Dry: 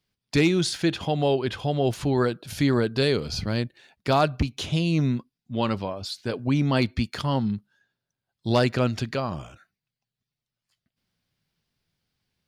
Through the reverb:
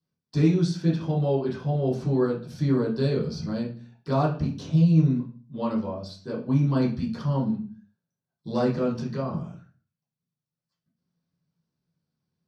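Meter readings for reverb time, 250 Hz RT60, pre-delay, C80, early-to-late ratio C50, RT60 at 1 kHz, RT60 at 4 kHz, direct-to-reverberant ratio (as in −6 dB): 0.40 s, 0.65 s, 3 ms, 12.5 dB, 7.5 dB, 0.40 s, 0.35 s, −11.0 dB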